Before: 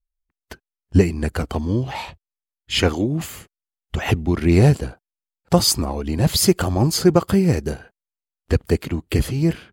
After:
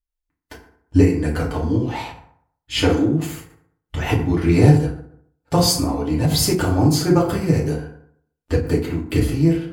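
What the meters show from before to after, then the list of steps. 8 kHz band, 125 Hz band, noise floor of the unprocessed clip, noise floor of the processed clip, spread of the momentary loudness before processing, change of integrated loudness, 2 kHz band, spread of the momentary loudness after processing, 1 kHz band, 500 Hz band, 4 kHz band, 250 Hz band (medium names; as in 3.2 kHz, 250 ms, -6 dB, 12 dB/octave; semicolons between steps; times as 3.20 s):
-1.0 dB, +1.5 dB, under -85 dBFS, -82 dBFS, 12 LU, +1.0 dB, 0.0 dB, 13 LU, +1.5 dB, 0.0 dB, -1.0 dB, +2.0 dB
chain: FDN reverb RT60 0.64 s, low-frequency decay 1×, high-frequency decay 0.55×, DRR -4.5 dB; endings held to a fixed fall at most 120 dB/s; trim -5 dB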